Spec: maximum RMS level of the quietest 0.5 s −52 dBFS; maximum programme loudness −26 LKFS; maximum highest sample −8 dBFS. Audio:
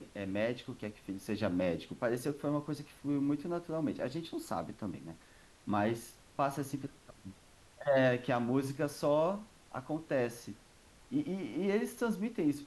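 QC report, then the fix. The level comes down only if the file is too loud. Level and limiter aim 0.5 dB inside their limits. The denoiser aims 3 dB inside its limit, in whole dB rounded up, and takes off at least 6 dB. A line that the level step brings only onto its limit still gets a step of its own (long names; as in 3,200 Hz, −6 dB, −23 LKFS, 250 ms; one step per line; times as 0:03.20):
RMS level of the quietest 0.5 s −60 dBFS: in spec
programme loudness −35.5 LKFS: in spec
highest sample −18.5 dBFS: in spec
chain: no processing needed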